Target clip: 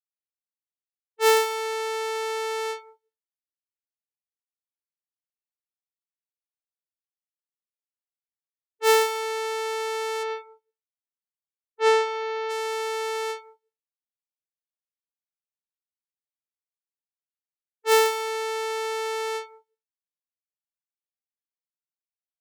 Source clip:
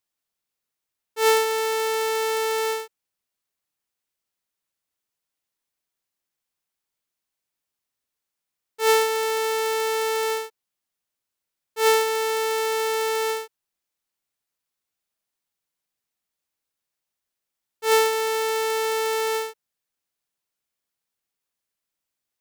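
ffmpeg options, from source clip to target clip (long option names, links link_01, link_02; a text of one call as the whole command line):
ffmpeg -i in.wav -filter_complex "[0:a]agate=range=-33dB:threshold=-20dB:ratio=3:detection=peak,asettb=1/sr,asplit=3[link_01][link_02][link_03];[link_01]atrim=end=10.234[link_04];[link_02]atrim=start=10.23:end=12.5,asetpts=PTS-STARTPTS,afade=type=in:duration=0.004:curve=qsin,afade=type=out:start_time=2.266:duration=0.004:curve=qsin,aemphasis=mode=reproduction:type=50kf[link_05];[link_03]atrim=start=12.496[link_06];[link_04][link_05]acrossfade=duration=0.004:curve1=hsin:curve2=qsin[link_07];[link_07][link_06]acrossfade=duration=0.004:curve1=qsin:curve2=hsin,aecho=1:1:186|372:0.133|0.0293,afftdn=noise_reduction=31:noise_floor=-39" out.wav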